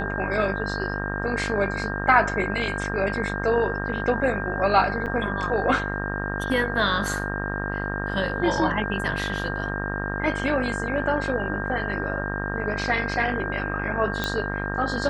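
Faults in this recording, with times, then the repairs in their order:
mains buzz 50 Hz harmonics 37 −30 dBFS
whistle 1,600 Hz −31 dBFS
0:05.06–0:05.07: drop-out 7.2 ms
0:14.24: click −11 dBFS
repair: click removal
notch filter 1,600 Hz, Q 30
hum removal 50 Hz, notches 37
repair the gap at 0:05.06, 7.2 ms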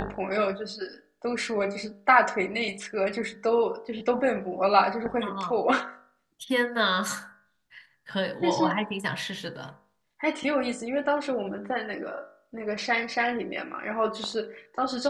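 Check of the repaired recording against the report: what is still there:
none of them is left

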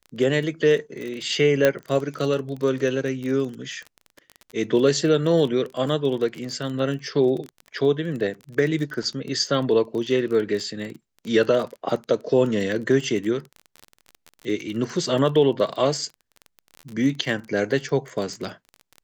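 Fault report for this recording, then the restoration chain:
surface crackle 22 per second −29 dBFS
0:01.65: click −5 dBFS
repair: click removal

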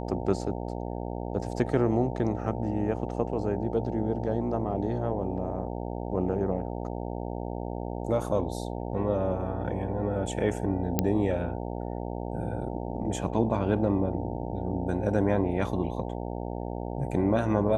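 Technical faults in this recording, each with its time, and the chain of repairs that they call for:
mains buzz 60 Hz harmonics 15 −34 dBFS
0:10.99: click −9 dBFS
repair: click removal
hum removal 60 Hz, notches 15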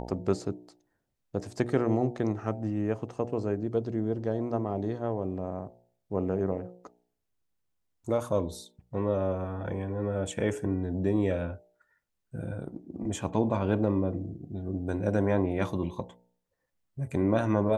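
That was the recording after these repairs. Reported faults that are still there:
none of them is left

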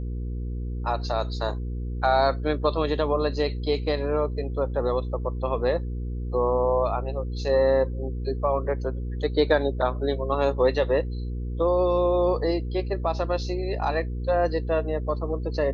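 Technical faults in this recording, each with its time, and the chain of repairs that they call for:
mains hum 60 Hz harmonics 8 −30 dBFS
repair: hum removal 60 Hz, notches 8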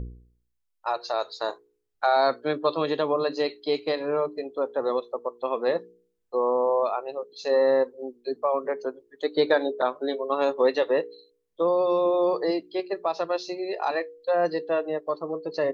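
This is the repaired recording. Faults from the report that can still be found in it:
none of them is left

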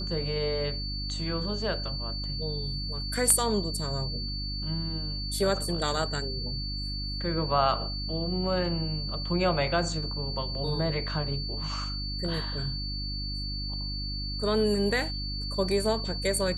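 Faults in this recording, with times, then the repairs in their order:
mains hum 50 Hz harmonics 6 −35 dBFS
whistle 4,500 Hz −35 dBFS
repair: hum removal 50 Hz, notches 6
notch filter 4,500 Hz, Q 30

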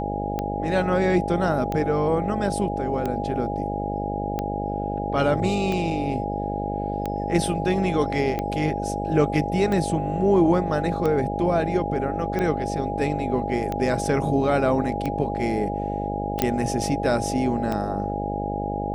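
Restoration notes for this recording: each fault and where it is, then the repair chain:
mains buzz 50 Hz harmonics 14 −29 dBFS
scratch tick 45 rpm −14 dBFS
whistle 820 Hz −29 dBFS
0:16.42: click −5 dBFS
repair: click removal
notch filter 820 Hz, Q 30
hum removal 50 Hz, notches 14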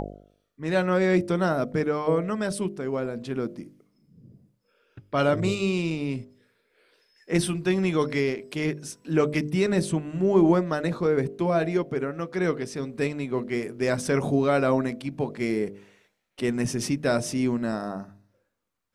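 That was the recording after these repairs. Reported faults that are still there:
none of them is left

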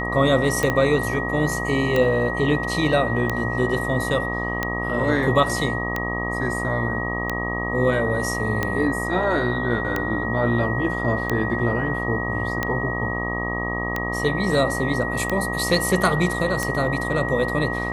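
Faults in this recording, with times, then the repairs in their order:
mains buzz 60 Hz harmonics 21 −28 dBFS
scratch tick 45 rpm −9 dBFS
whistle 1,900 Hz −27 dBFS
0:00.70: click −9 dBFS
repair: click removal
hum removal 60 Hz, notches 21
notch filter 1,900 Hz, Q 30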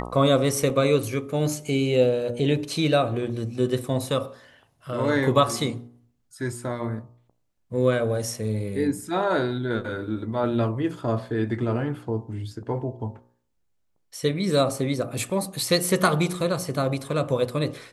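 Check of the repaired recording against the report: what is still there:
0:00.70: click

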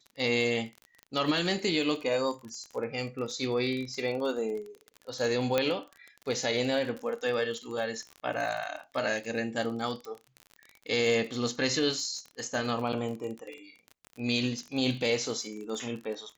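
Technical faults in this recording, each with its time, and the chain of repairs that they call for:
surface crackle 32 per second −36 dBFS
0:05.58: click −12 dBFS
0:10.05: click −28 dBFS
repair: click removal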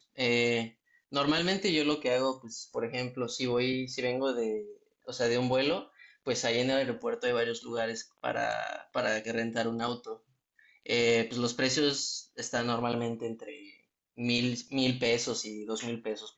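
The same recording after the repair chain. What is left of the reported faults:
none of them is left

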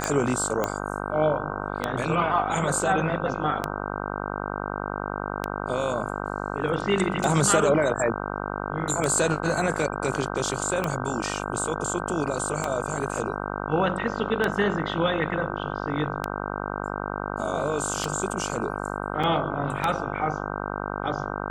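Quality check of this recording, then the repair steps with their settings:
mains buzz 50 Hz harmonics 31 −31 dBFS
scratch tick 33 1/3 rpm −10 dBFS
0:00.64: click −11 dBFS
0:19.23–0:19.24: drop-out 5.5 ms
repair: click removal
hum removal 50 Hz, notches 31
repair the gap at 0:19.23, 5.5 ms

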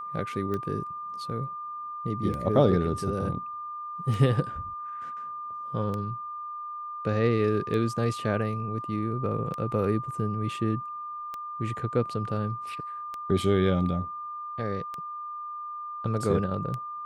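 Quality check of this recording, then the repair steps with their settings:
scratch tick 33 1/3 rpm −21 dBFS
whistle 1,200 Hz −34 dBFS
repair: click removal
notch filter 1,200 Hz, Q 30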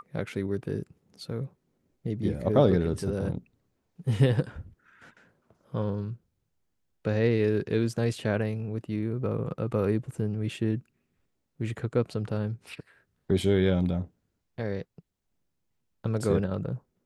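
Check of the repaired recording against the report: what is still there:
none of them is left

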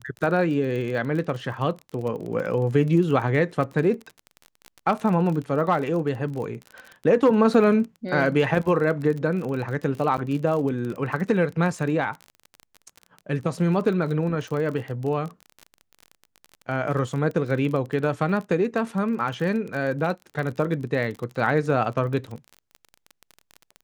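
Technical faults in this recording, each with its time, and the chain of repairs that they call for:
surface crackle 31 per second −30 dBFS
0:10.17–0:10.18: drop-out 8 ms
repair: click removal
repair the gap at 0:10.17, 8 ms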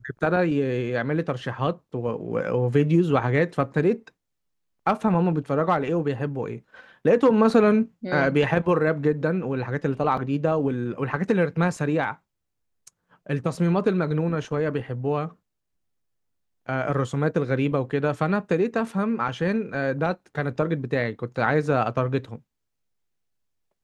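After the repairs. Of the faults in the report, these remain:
none of them is left

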